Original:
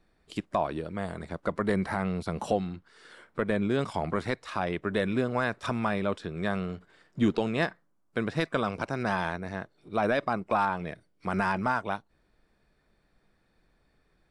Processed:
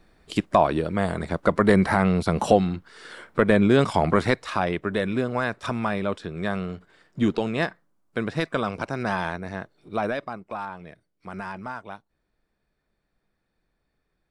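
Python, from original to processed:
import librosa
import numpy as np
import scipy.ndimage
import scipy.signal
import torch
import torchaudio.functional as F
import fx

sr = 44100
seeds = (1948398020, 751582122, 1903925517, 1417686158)

y = fx.gain(x, sr, db=fx.line((4.24, 9.5), (4.98, 2.5), (9.93, 2.5), (10.39, -7.0)))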